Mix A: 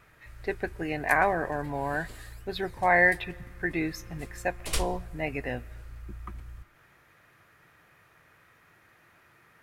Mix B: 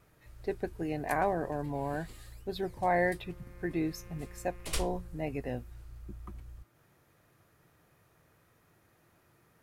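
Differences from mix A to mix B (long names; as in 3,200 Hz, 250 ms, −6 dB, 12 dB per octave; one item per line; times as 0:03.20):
speech: add parametric band 1,900 Hz −12.5 dB 2 octaves
first sound −4.0 dB
reverb: off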